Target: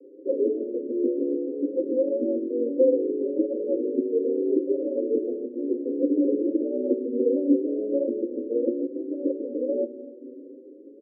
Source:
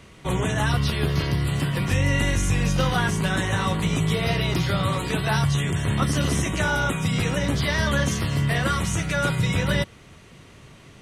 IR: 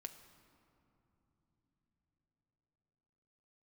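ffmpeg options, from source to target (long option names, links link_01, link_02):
-filter_complex "[0:a]asuperpass=centerf=370:order=20:qfactor=1.2,asplit=2[link_01][link_02];[1:a]atrim=start_sample=2205[link_03];[link_02][link_03]afir=irnorm=-1:irlink=0,volume=6dB[link_04];[link_01][link_04]amix=inputs=2:normalize=0,asplit=2[link_05][link_06];[link_06]adelay=7.6,afreqshift=0.66[link_07];[link_05][link_07]amix=inputs=2:normalize=1,volume=5dB"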